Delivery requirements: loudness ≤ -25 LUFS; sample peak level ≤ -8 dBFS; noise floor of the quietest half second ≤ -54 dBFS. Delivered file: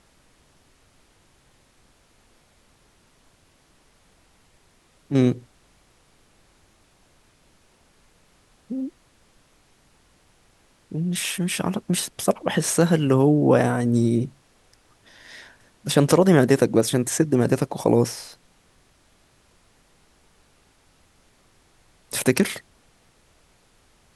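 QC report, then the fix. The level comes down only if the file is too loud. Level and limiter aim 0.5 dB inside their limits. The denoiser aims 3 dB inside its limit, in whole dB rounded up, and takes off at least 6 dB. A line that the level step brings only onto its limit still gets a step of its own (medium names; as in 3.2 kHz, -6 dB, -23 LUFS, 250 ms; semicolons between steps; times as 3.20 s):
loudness -21.5 LUFS: fail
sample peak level -3.0 dBFS: fail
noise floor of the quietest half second -60 dBFS: pass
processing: trim -4 dB; peak limiter -8.5 dBFS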